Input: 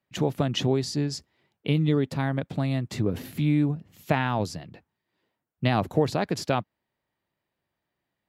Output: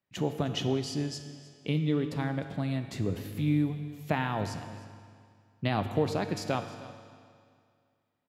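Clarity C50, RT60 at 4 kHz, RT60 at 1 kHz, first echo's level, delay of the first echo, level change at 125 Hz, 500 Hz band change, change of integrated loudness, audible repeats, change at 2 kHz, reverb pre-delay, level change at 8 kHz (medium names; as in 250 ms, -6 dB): 8.5 dB, 2.0 s, 2.2 s, -18.5 dB, 308 ms, -5.0 dB, -5.0 dB, -5.0 dB, 1, -4.5 dB, 9 ms, -5.0 dB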